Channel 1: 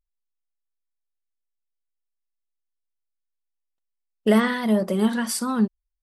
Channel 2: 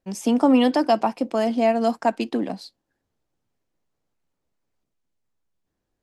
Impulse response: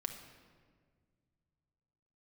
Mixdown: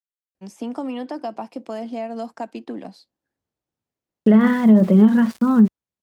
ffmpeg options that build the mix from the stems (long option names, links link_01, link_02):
-filter_complex "[0:a]lowpass=2200,equalizer=frequency=170:width_type=o:width=1.7:gain=11.5,aeval=exprs='val(0)*gte(abs(val(0)),0.015)':channel_layout=same,volume=2dB[link_01];[1:a]acrossover=split=1000|2200[link_02][link_03][link_04];[link_02]acompressor=threshold=-20dB:ratio=4[link_05];[link_03]acompressor=threshold=-37dB:ratio=4[link_06];[link_04]acompressor=threshold=-43dB:ratio=4[link_07];[link_05][link_06][link_07]amix=inputs=3:normalize=0,adelay=350,volume=-6dB[link_08];[link_01][link_08]amix=inputs=2:normalize=0,highpass=53,alimiter=limit=-5.5dB:level=0:latency=1:release=71"